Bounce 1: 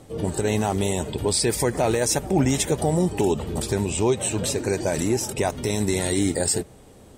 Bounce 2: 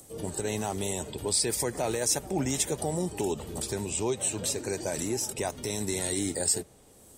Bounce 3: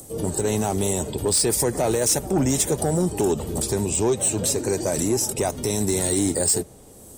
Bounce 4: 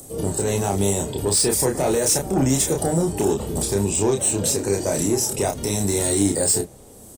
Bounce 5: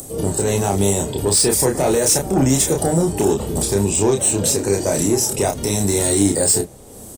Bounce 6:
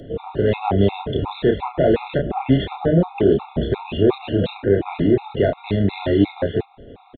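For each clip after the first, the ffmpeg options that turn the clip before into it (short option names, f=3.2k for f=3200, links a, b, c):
-filter_complex "[0:a]bass=f=250:g=-3,treble=f=4k:g=6,acrossover=split=120|1200|7100[a][b][c][d];[d]acompressor=mode=upward:threshold=-36dB:ratio=2.5[e];[a][b][c][e]amix=inputs=4:normalize=0,volume=-8dB"
-filter_complex "[0:a]equalizer=f=2.4k:w=0.46:g=-7,asplit=2[a][b];[b]aeval=exprs='0.2*sin(PI/2*2.82*val(0)/0.2)':c=same,volume=-5dB[c];[a][c]amix=inputs=2:normalize=0"
-filter_complex "[0:a]asplit=2[a][b];[b]adelay=30,volume=-4dB[c];[a][c]amix=inputs=2:normalize=0"
-af "acompressor=mode=upward:threshold=-34dB:ratio=2.5,volume=3.5dB"
-af "aresample=8000,aresample=44100,afftfilt=real='re*gt(sin(2*PI*2.8*pts/sr)*(1-2*mod(floor(b*sr/1024/690),2)),0)':imag='im*gt(sin(2*PI*2.8*pts/sr)*(1-2*mod(floor(b*sr/1024/690),2)),0)':win_size=1024:overlap=0.75,volume=2.5dB"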